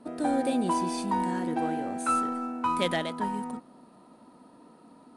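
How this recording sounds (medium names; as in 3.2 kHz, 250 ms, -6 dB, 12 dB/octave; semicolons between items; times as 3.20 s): IMA ADPCM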